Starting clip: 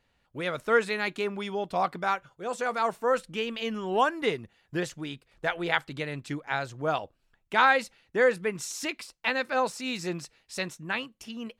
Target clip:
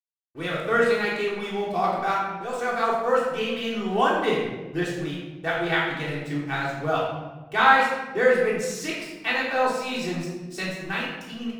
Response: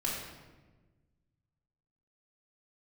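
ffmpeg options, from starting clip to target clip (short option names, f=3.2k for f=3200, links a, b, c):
-filter_complex "[0:a]aeval=exprs='sgn(val(0))*max(abs(val(0))-0.00335,0)':c=same[a];[1:a]atrim=start_sample=2205,asetrate=48510,aresample=44100[b];[a][b]afir=irnorm=-1:irlink=0"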